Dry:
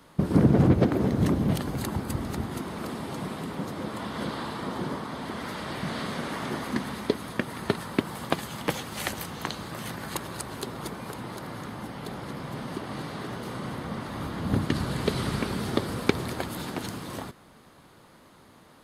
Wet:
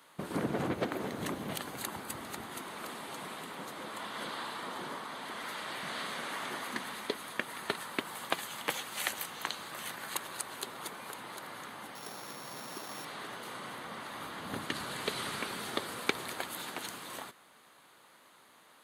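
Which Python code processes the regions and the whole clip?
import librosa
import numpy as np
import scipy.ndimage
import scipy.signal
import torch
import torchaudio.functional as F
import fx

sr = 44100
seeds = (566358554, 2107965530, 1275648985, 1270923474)

y = fx.chain(x, sr, fx.sample_sort(block=8),
    fx.peak_eq(hz=94.0, db=-3.5, octaves=0.37), at=(11.95, 13.05))
y = fx.highpass(y, sr, hz=1300.0, slope=6)
y = fx.peak_eq(y, sr, hz=5200.0, db=-7.5, octaves=0.32)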